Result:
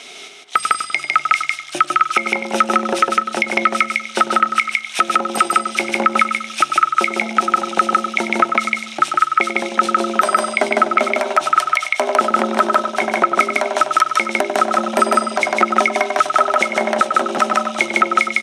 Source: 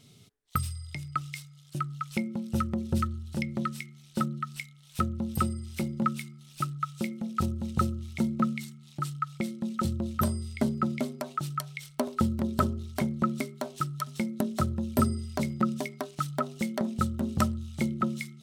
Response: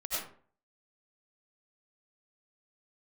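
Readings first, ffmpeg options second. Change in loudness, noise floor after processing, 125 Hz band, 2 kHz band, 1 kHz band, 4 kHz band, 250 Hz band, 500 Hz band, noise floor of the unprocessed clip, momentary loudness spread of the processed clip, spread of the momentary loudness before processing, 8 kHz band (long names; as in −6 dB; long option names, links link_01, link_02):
+15.0 dB, −34 dBFS, below −10 dB, +24.0 dB, +19.5 dB, +19.0 dB, +4.0 dB, +17.0 dB, −55 dBFS, 3 LU, 8 LU, +15.0 dB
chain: -filter_complex "[0:a]highpass=frequency=410:width=0.5412,highpass=frequency=410:width=1.3066,equalizer=frequency=500:width_type=q:width=4:gain=-8,equalizer=frequency=730:width_type=q:width=4:gain=6,equalizer=frequency=1600:width_type=q:width=4:gain=4,equalizer=frequency=2300:width_type=q:width=4:gain=7,equalizer=frequency=4500:width_type=q:width=4:gain=-7,equalizer=frequency=7600:width_type=q:width=4:gain=-7,lowpass=frequency=8600:width=0.5412,lowpass=frequency=8600:width=1.3066,asplit=2[link_01][link_02];[link_02]adelay=95,lowpass=frequency=1400:poles=1,volume=-8dB,asplit=2[link_03][link_04];[link_04]adelay=95,lowpass=frequency=1400:poles=1,volume=0.51,asplit=2[link_05][link_06];[link_06]adelay=95,lowpass=frequency=1400:poles=1,volume=0.51,asplit=2[link_07][link_08];[link_08]adelay=95,lowpass=frequency=1400:poles=1,volume=0.51,asplit=2[link_09][link_10];[link_10]adelay=95,lowpass=frequency=1400:poles=1,volume=0.51,asplit=2[link_11][link_12];[link_12]adelay=95,lowpass=frequency=1400:poles=1,volume=0.51[link_13];[link_03][link_05][link_07][link_09][link_11][link_13]amix=inputs=6:normalize=0[link_14];[link_01][link_14]amix=inputs=2:normalize=0,acompressor=threshold=-50dB:ratio=1.5,asplit=2[link_15][link_16];[link_16]aecho=0:1:154:0.668[link_17];[link_15][link_17]amix=inputs=2:normalize=0,alimiter=level_in=27dB:limit=-1dB:release=50:level=0:latency=1,volume=-1dB"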